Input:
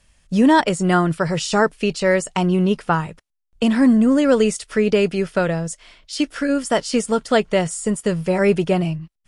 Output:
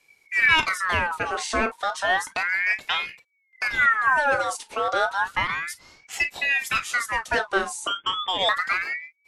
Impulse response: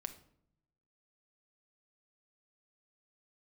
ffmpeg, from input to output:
-filter_complex "[0:a]asettb=1/sr,asplit=3[s0][s1][s2];[s0]atrim=end=7.874[s3];[s1]atrim=start=7.87:end=8.49,asetpts=PTS-STARTPTS,afade=t=in:d=0.004:c=qsin,afade=t=out:st=0.616:d=0.004:c=qsin,lowpass=f=2100:t=q:w=0.5098,lowpass=f=2100:t=q:w=0.6013,lowpass=f=2100:t=q:w=0.9,lowpass=f=2100:t=q:w=2.563,afreqshift=-2500[s4];[s2]atrim=start=8.486[s5];[s3][s4]acrossfade=d=0.004:c1=hsin:c2=qsin[s6];[s6][s5]acrossfade=d=0.004:c1=qsin:c2=hsin,acontrast=81[s7];[1:a]atrim=start_sample=2205,atrim=end_sample=3969,asetrate=70560,aresample=44100[s8];[s7][s8]afir=irnorm=-1:irlink=0,aeval=exprs='val(0)*sin(2*PI*1600*n/s+1600*0.45/0.32*sin(2*PI*0.32*n/s))':c=same,volume=0.75"

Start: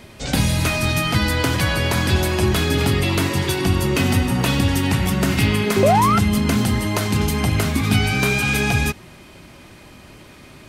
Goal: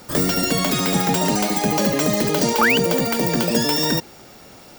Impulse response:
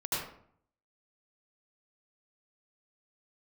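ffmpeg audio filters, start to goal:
-af "aexciter=amount=7:drive=3.8:freq=7500,asetrate=98343,aresample=44100,volume=0.841"

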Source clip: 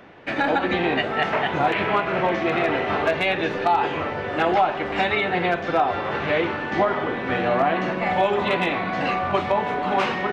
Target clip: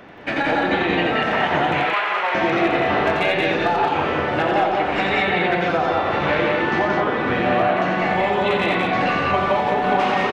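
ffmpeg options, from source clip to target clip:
-filter_complex "[0:a]asettb=1/sr,asplit=3[s0][s1][s2];[s0]atrim=end=1.724[s3];[s1]atrim=start=1.72:end=2.35,asetpts=PTS-STARTPTS,afade=t=in:d=0.004:c=qsin,afade=t=out:st=0.626:d=0.004:c=qsin,highpass=890[s4];[s2]atrim=start=2.346[s5];[s3][s4]acrossfade=d=0.004:c1=hsin:c2=qsin[s6];[s6][s5]acrossfade=d=0.004:c1=qsin:c2=hsin,acompressor=threshold=0.0794:ratio=6,aecho=1:1:87.46|177.8|212.8:0.631|0.708|0.562,volume=1.5"

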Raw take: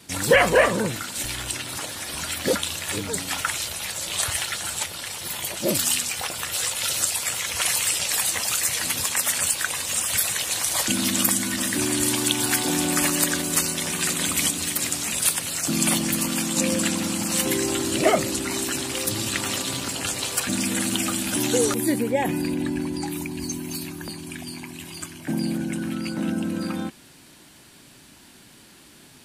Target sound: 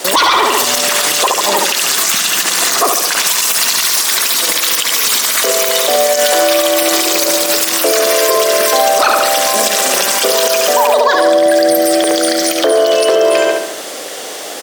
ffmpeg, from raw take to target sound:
-filter_complex "[0:a]highpass=210,lowpass=5700,acontrast=70,asplit=2[s0][s1];[s1]adelay=140,lowpass=f=2000:p=1,volume=0.631,asplit=2[s2][s3];[s3]adelay=140,lowpass=f=2000:p=1,volume=0.51,asplit=2[s4][s5];[s5]adelay=140,lowpass=f=2000:p=1,volume=0.51,asplit=2[s6][s7];[s7]adelay=140,lowpass=f=2000:p=1,volume=0.51,asplit=2[s8][s9];[s9]adelay=140,lowpass=f=2000:p=1,volume=0.51,asplit=2[s10][s11];[s11]adelay=140,lowpass=f=2000:p=1,volume=0.51,asplit=2[s12][s13];[s13]adelay=140,lowpass=f=2000:p=1,volume=0.51[s14];[s2][s4][s6][s8][s10][s12][s14]amix=inputs=7:normalize=0[s15];[s0][s15]amix=inputs=2:normalize=0,acompressor=threshold=0.0501:ratio=5,asetrate=88200,aresample=44100,alimiter=level_in=10:limit=0.891:release=50:level=0:latency=1,volume=0.891"

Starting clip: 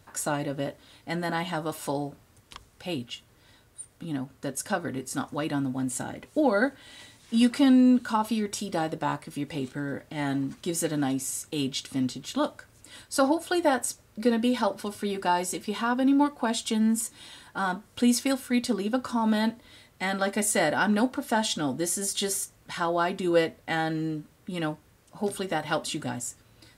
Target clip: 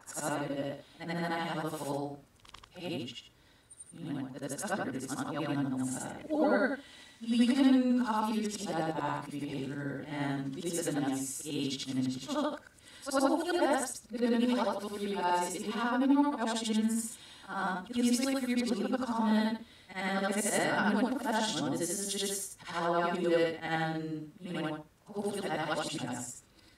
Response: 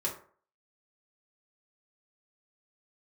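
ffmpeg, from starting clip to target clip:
-af "afftfilt=real='re':imag='-im':win_size=8192:overlap=0.75,highshelf=f=9800:g=-5"

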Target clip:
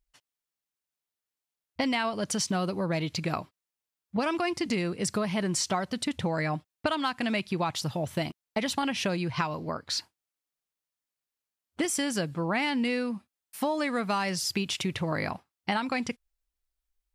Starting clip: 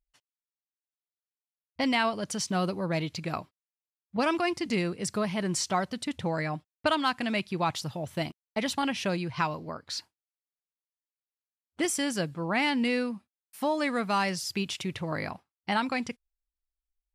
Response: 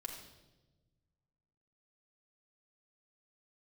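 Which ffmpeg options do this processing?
-af "acompressor=threshold=0.0316:ratio=6,volume=1.78"

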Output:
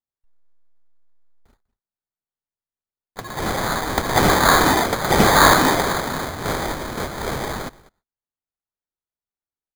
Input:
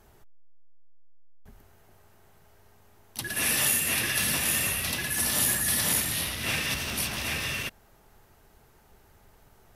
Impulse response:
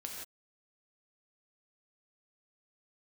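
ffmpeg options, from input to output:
-filter_complex "[0:a]agate=range=0.00355:threshold=0.00447:ratio=16:detection=peak,aexciter=amount=3.3:drive=8:freq=8000,asplit=2[s0][s1];[s1]adelay=198.3,volume=0.126,highshelf=f=4000:g=-4.46[s2];[s0][s2]amix=inputs=2:normalize=0,acrusher=samples=16:mix=1:aa=0.000001"

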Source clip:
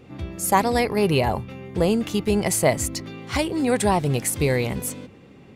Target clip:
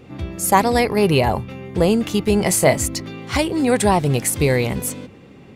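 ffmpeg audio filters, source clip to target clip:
-filter_complex "[0:a]asettb=1/sr,asplit=3[s0][s1][s2];[s0]atrim=end=2.384[s3];[s1]atrim=start=2.38:end=2.8,asetpts=PTS-STARTPTS,afade=t=in:d=0.004:c=qsin,afade=t=out:st=0.416:d=0.004:c=qsin,asplit=2[s4][s5];[s5]adelay=22,volume=0.355[s6];[s4][s6]amix=inputs=2:normalize=0,atrim=end_sample=18522[s7];[s2]atrim=start=2.796[s8];[s3][s7]acrossfade=d=0.004:c1=hsin:c2=qsin[s9];[s9][s8]acrossfade=d=0.004:c1=qsin:c2=hsin,volume=1.58"

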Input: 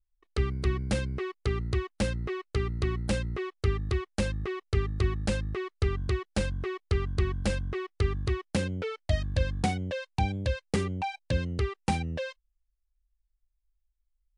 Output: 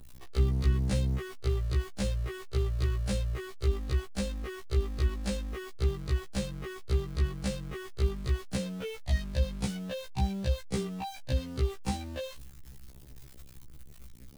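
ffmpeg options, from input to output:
-filter_complex "[0:a]aeval=exprs='val(0)+0.5*0.0133*sgn(val(0))':c=same,acrossover=split=220|3000[s0][s1][s2];[s1]acompressor=threshold=0.00708:ratio=1.5[s3];[s0][s3][s2]amix=inputs=3:normalize=0,afftfilt=real='re*1.73*eq(mod(b,3),0)':imag='im*1.73*eq(mod(b,3),0)':win_size=2048:overlap=0.75"

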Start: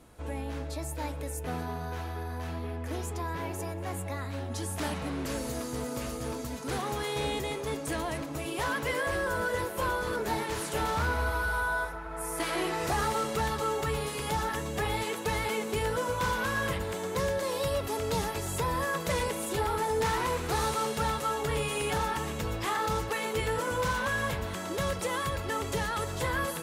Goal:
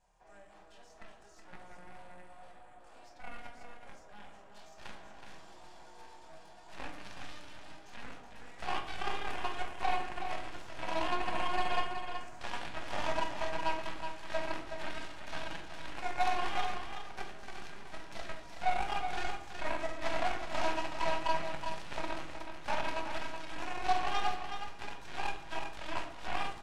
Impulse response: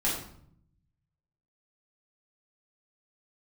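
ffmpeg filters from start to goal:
-filter_complex "[0:a]acrossover=split=7000[s0][s1];[s0]highpass=f=1000:t=q:w=2[s2];[s1]acompressor=threshold=0.002:ratio=20[s3];[s2][s3]amix=inputs=2:normalize=0,aeval=exprs='val(0)+0.00112*(sin(2*PI*50*n/s)+sin(2*PI*2*50*n/s)/2+sin(2*PI*3*50*n/s)/3+sin(2*PI*4*50*n/s)/4+sin(2*PI*5*50*n/s)/5)':c=same,flanger=delay=22.5:depth=2.1:speed=3,asetrate=32097,aresample=44100,atempo=1.37395,aeval=exprs='0.126*(cos(1*acos(clip(val(0)/0.126,-1,1)))-cos(1*PI/2))+0.0224*(cos(2*acos(clip(val(0)/0.126,-1,1)))-cos(2*PI/2))+0.00794*(cos(6*acos(clip(val(0)/0.126,-1,1)))-cos(6*PI/2))+0.0251*(cos(7*acos(clip(val(0)/0.126,-1,1)))-cos(7*PI/2))':c=same,aecho=1:1:372:0.422,asplit=2[s4][s5];[1:a]atrim=start_sample=2205[s6];[s5][s6]afir=irnorm=-1:irlink=0,volume=0.335[s7];[s4][s7]amix=inputs=2:normalize=0,volume=0.422"

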